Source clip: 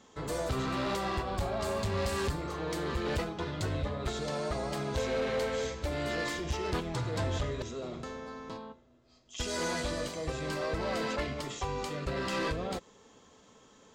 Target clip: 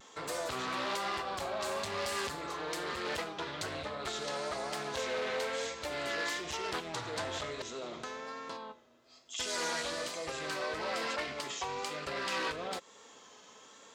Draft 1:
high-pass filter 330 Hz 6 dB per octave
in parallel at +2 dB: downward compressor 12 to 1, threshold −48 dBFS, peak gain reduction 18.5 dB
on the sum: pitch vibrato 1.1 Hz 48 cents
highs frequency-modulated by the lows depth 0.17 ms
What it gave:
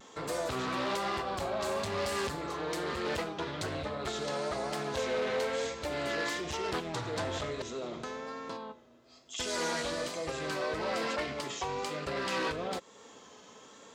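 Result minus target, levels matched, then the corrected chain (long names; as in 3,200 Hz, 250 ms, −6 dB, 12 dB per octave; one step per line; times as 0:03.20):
250 Hz band +4.0 dB
high-pass filter 890 Hz 6 dB per octave
in parallel at +2 dB: downward compressor 12 to 1, threshold −48 dBFS, peak gain reduction 16 dB
on the sum: pitch vibrato 1.1 Hz 48 cents
highs frequency-modulated by the lows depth 0.17 ms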